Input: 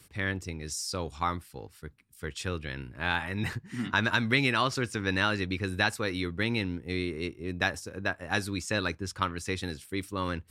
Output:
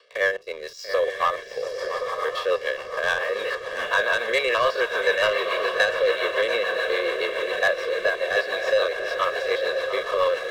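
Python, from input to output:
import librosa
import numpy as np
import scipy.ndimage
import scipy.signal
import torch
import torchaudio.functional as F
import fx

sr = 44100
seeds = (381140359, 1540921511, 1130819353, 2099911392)

p1 = fx.spec_steps(x, sr, hold_ms=50)
p2 = fx.cabinet(p1, sr, low_hz=500.0, low_slope=24, high_hz=3800.0, hz=(520.0, 970.0, 1500.0, 2400.0, 3600.0), db=(7, -3, -4, -8, -3))
p3 = p2 + fx.echo_diffused(p2, sr, ms=977, feedback_pct=57, wet_db=-7.5, dry=0)
p4 = fx.leveller(p3, sr, passes=2)
p5 = fx.rotary(p4, sr, hz=7.0)
p6 = p5 + 0.94 * np.pad(p5, (int(1.8 * sr / 1000.0), 0))[:len(p5)]
p7 = p6 + 10.0 ** (-14.0 / 20.0) * np.pad(p6, (int(685 * sr / 1000.0), 0))[:len(p6)]
p8 = fx.band_squash(p7, sr, depth_pct=40)
y = F.gain(torch.from_numpy(p8), 4.5).numpy()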